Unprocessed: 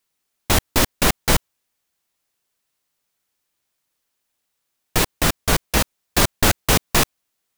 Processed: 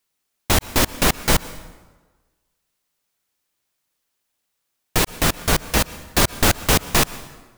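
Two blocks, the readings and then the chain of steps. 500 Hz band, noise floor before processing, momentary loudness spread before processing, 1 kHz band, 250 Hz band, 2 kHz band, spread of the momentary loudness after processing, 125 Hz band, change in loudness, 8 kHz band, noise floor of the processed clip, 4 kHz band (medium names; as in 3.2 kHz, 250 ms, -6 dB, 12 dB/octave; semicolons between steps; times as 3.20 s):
0.0 dB, -76 dBFS, 5 LU, 0.0 dB, 0.0 dB, 0.0 dB, 6 LU, 0.0 dB, 0.0 dB, 0.0 dB, -76 dBFS, 0.0 dB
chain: plate-style reverb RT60 1.3 s, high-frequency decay 0.7×, pre-delay 105 ms, DRR 16.5 dB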